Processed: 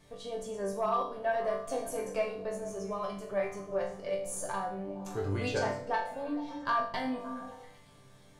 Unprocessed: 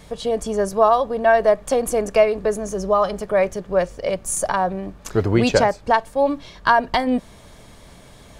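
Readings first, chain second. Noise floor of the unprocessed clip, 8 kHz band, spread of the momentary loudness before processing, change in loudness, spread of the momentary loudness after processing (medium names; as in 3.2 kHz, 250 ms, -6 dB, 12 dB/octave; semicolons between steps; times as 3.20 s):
-45 dBFS, -14.5 dB, 8 LU, -14.5 dB, 8 LU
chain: chord resonator G2 sus4, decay 0.49 s; saturation -20 dBFS, distortion -25 dB; on a send: repeats whose band climbs or falls 115 ms, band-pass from 150 Hz, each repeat 0.7 oct, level -4 dB; on the sum: trim +1.5 dB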